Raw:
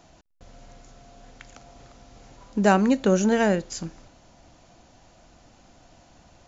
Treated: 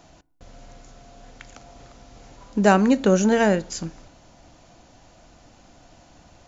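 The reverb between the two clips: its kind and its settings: FDN reverb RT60 0.57 s, low-frequency decay 1.2×, high-frequency decay 0.35×, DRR 19.5 dB; gain +2.5 dB

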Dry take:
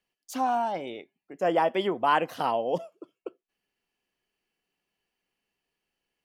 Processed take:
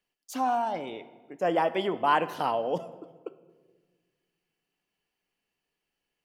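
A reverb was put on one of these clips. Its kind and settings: shoebox room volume 1400 m³, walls mixed, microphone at 0.4 m; gain -1 dB

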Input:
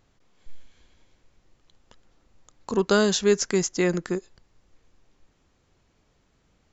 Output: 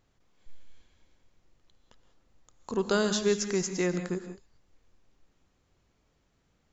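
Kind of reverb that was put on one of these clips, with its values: non-linear reverb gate 0.21 s rising, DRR 8.5 dB; gain -6 dB

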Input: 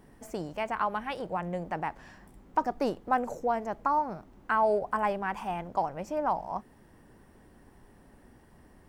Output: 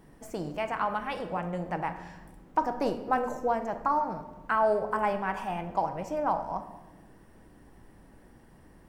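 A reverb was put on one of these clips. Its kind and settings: shoebox room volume 670 m³, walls mixed, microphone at 0.65 m

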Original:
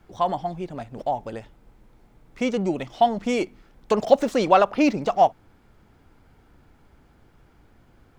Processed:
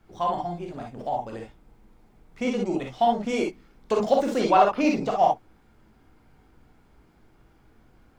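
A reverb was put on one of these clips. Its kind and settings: non-linear reverb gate 80 ms rising, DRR 0 dB; gain -5 dB

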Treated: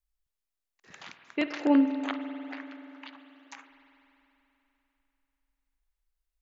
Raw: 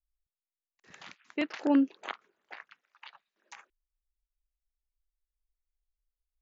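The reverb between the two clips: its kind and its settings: spring tank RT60 3.4 s, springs 48 ms, chirp 25 ms, DRR 8 dB; gain +2.5 dB

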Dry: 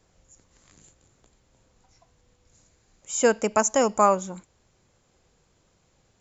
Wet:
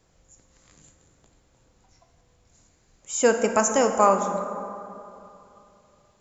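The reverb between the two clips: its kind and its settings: plate-style reverb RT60 2.9 s, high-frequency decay 0.4×, DRR 5.5 dB

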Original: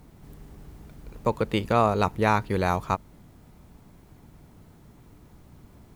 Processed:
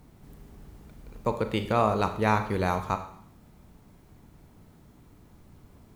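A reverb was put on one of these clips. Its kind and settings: Schroeder reverb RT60 0.65 s, combs from 29 ms, DRR 8 dB; gain -3 dB

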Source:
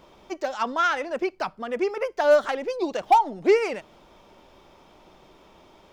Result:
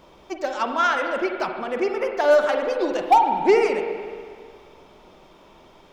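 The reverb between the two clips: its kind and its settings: spring tank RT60 2 s, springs 41/45 ms, chirp 30 ms, DRR 4 dB; gain +1.5 dB

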